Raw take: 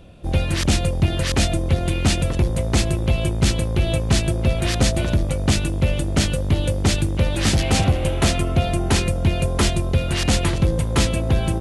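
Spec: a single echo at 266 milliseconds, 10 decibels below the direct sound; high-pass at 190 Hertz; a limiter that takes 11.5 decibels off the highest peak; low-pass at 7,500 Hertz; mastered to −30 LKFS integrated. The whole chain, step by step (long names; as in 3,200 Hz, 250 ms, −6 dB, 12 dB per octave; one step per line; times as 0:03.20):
high-pass filter 190 Hz
low-pass filter 7,500 Hz
brickwall limiter −17 dBFS
single-tap delay 266 ms −10 dB
level −3 dB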